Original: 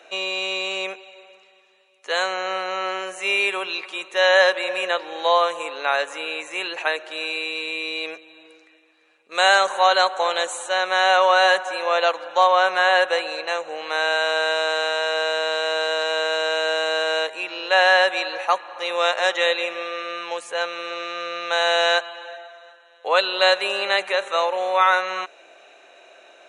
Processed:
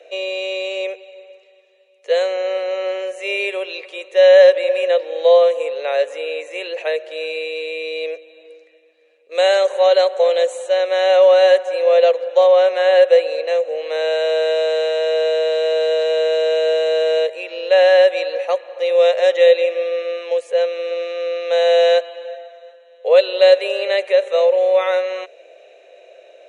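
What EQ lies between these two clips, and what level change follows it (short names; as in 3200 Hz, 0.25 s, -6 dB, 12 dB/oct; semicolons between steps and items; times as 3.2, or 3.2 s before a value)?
resonant high-pass 500 Hz, resonance Q 4.9; band shelf 1100 Hz -11 dB 1.2 oct; high shelf 5300 Hz -7 dB; -1.0 dB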